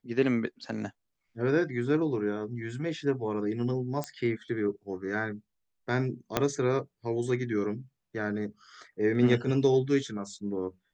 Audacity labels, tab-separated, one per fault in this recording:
4.040000	4.040000	pop -18 dBFS
6.370000	6.370000	pop -9 dBFS

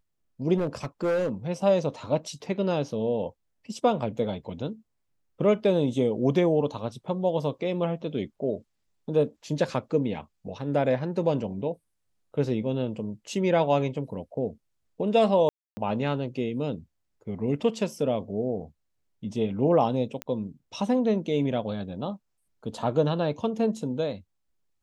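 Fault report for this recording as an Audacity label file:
0.570000	1.300000	clipped -22 dBFS
15.490000	15.770000	gap 0.28 s
20.220000	20.220000	pop -17 dBFS

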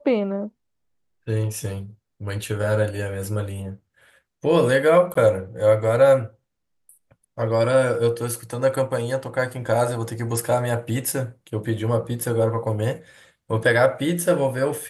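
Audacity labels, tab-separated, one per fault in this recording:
5.140000	5.150000	gap 14 ms

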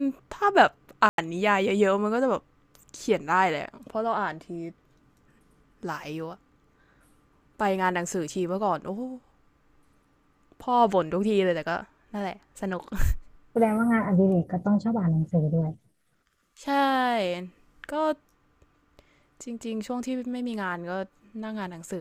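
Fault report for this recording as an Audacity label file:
1.090000	1.180000	gap 92 ms

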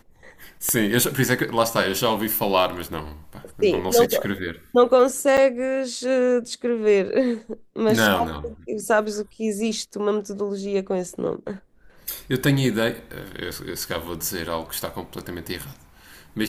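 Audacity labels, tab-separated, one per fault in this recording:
0.690000	0.690000	pop -9 dBFS
5.370000	5.380000	gap 7.5 ms

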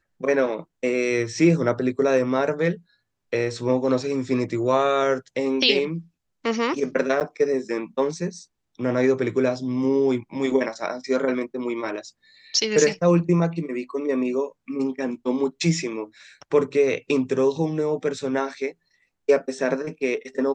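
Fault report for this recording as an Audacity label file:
7.200000	7.210000	gap 8.9 ms

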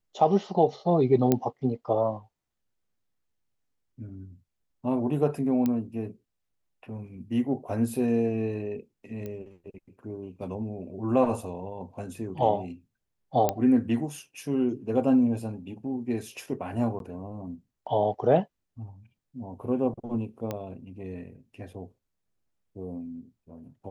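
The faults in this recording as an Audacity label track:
1.320000	1.320000	pop -9 dBFS
5.660000	5.660000	pop -15 dBFS
9.260000	9.260000	pop -24 dBFS
13.490000	13.490000	pop -10 dBFS
16.990000	17.000000	gap 12 ms
20.510000	20.510000	pop -18 dBFS

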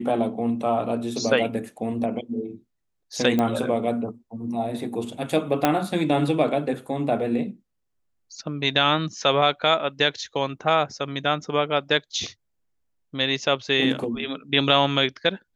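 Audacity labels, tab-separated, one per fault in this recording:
3.390000	3.390000	pop -11 dBFS
5.650000	5.650000	pop -5 dBFS

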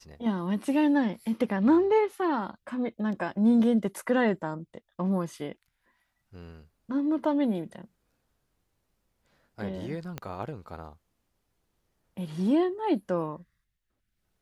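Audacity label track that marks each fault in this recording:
10.180000	10.180000	pop -20 dBFS

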